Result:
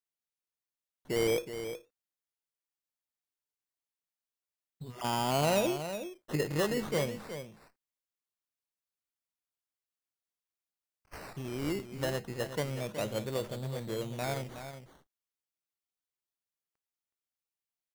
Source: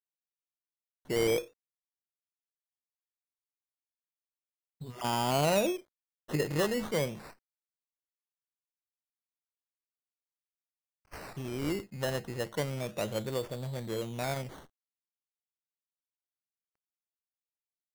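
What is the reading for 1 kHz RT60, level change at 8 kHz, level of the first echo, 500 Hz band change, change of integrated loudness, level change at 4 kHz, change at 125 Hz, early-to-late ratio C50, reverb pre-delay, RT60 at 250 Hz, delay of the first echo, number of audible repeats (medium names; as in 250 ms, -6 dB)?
no reverb, -0.5 dB, -10.0 dB, -0.5 dB, -1.0 dB, -0.5 dB, -0.5 dB, no reverb, no reverb, no reverb, 370 ms, 1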